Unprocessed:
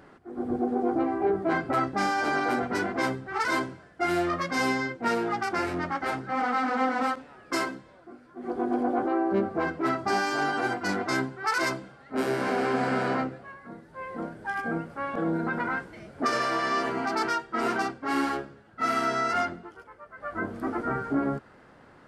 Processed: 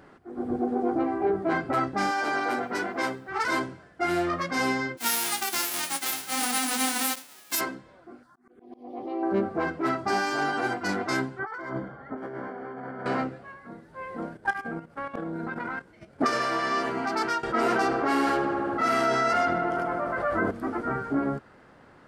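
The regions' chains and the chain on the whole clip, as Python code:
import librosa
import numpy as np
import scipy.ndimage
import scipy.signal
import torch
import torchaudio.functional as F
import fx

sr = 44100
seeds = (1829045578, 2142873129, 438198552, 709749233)

y = fx.chain(x, sr, fx.highpass(hz=310.0, slope=6),
    fx.quant_dither(seeds[0], bits=12, dither='none'), at=(2.11, 3.29))
y = fx.envelope_flatten(y, sr, power=0.1, at=(4.97, 7.59), fade=0.02)
y = fx.highpass(y, sr, hz=240.0, slope=12, at=(4.97, 7.59), fade=0.02)
y = fx.chain(y, sr, fx.tilt_eq(slope=1.5),
    fx.env_phaser(low_hz=410.0, high_hz=1500.0, full_db=-25.5),
    fx.auto_swell(attack_ms=525.0), at=(8.23, 9.23))
y = fx.chain(y, sr, fx.savgol(points=41),
    fx.over_compress(threshold_db=-36.0, ratio=-1.0), at=(11.39, 13.06))
y = fx.chain(y, sr, fx.transient(attack_db=11, sustain_db=-4),
    fx.level_steps(step_db=11), at=(14.35, 16.27))
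y = fx.chain(y, sr, fx.peak_eq(hz=550.0, db=4.5, octaves=0.75),
    fx.echo_filtered(ms=75, feedback_pct=83, hz=2700.0, wet_db=-12.0),
    fx.env_flatten(amount_pct=70), at=(17.43, 20.51))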